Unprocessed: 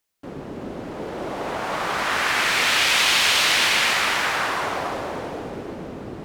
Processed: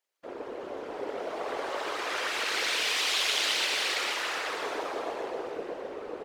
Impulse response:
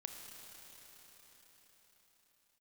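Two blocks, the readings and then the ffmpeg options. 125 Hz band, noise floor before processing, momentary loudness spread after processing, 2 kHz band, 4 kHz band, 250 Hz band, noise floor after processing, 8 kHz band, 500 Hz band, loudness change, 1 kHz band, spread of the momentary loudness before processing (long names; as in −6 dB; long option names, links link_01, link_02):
below −20 dB, −36 dBFS, 14 LU, −10.5 dB, −8.0 dB, −10.5 dB, −43 dBFS, −9.0 dB, −4.5 dB, −10.5 dB, −10.0 dB, 19 LU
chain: -filter_complex "[0:a]asplit=2[link_01][link_02];[link_02]highpass=frequency=720:poles=1,volume=11dB,asoftclip=type=tanh:threshold=-4dB[link_03];[link_01][link_03]amix=inputs=2:normalize=0,lowpass=frequency=3900:poles=1,volume=-6dB,acrossover=split=470|3000[link_04][link_05][link_06];[link_05]acompressor=threshold=-32dB:ratio=2[link_07];[link_04][link_07][link_06]amix=inputs=3:normalize=0,tremolo=f=100:d=0.889,lowshelf=frequency=300:width_type=q:width=3:gain=-11,afftfilt=real='hypot(re,im)*cos(2*PI*random(0))':imag='hypot(re,im)*sin(2*PI*random(1))':win_size=512:overlap=0.75,asplit=2[link_08][link_09];[link_09]aecho=0:1:123:0.531[link_10];[link_08][link_10]amix=inputs=2:normalize=0"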